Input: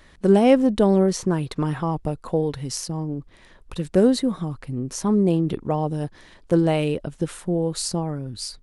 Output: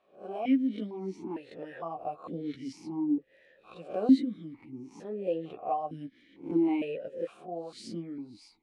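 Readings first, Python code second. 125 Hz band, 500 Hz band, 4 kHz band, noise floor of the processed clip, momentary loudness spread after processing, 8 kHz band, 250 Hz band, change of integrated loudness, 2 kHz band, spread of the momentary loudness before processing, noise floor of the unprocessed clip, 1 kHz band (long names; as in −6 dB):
−22.0 dB, −14.0 dB, −17.0 dB, −64 dBFS, 17 LU, below −25 dB, −8.5 dB, −10.0 dB, below −10 dB, 13 LU, −52 dBFS, −8.0 dB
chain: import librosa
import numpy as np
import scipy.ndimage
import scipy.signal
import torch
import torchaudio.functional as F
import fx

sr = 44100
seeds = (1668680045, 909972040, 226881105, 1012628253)

y = fx.spec_swells(x, sr, rise_s=0.36)
y = fx.rider(y, sr, range_db=5, speed_s=2.0)
y = fx.chorus_voices(y, sr, voices=6, hz=0.67, base_ms=14, depth_ms=4.9, mix_pct=35)
y = fx.vowel_held(y, sr, hz=2.2)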